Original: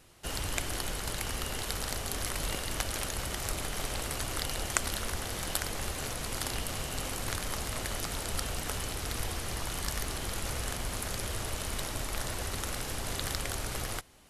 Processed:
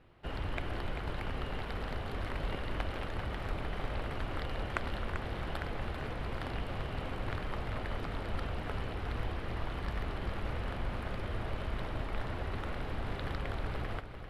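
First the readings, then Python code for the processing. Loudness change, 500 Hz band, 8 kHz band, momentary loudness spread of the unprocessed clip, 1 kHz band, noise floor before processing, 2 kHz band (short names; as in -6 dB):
-4.5 dB, -0.5 dB, -29.0 dB, 2 LU, -1.5 dB, -38 dBFS, -3.5 dB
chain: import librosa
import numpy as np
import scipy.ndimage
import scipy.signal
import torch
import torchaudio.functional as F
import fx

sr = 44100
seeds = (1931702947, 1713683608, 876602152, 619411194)

p1 = fx.air_absorb(x, sr, metres=460.0)
y = p1 + fx.echo_single(p1, sr, ms=391, db=-8.0, dry=0)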